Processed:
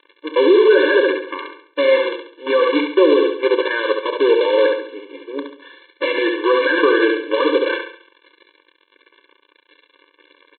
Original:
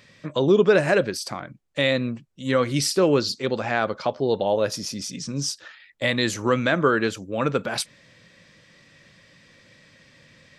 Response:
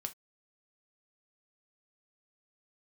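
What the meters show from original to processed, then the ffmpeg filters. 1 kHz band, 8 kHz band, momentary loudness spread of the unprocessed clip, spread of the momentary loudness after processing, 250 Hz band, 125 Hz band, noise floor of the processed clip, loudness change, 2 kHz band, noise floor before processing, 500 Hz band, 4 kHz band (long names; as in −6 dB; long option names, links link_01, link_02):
+4.5 dB, below −40 dB, 12 LU, 17 LU, +4.5 dB, below −30 dB, −61 dBFS, +7.0 dB, +6.5 dB, −55 dBFS, +8.0 dB, +2.5 dB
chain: -filter_complex "[0:a]lowpass=frequency=2200:width=0.5412,lowpass=frequency=2200:width=1.3066,aresample=8000,acrusher=bits=5:dc=4:mix=0:aa=0.000001,aresample=44100,asplit=2[link_01][link_02];[link_02]adelay=32,volume=-13.5dB[link_03];[link_01][link_03]amix=inputs=2:normalize=0,asplit=2[link_04][link_05];[link_05]aecho=0:1:69|138|207|276|345:0.501|0.21|0.0884|0.0371|0.0156[link_06];[link_04][link_06]amix=inputs=2:normalize=0,alimiter=level_in=12.5dB:limit=-1dB:release=50:level=0:latency=1,afftfilt=real='re*eq(mod(floor(b*sr/1024/300),2),1)':imag='im*eq(mod(floor(b*sr/1024/300),2),1)':win_size=1024:overlap=0.75,volume=-2dB"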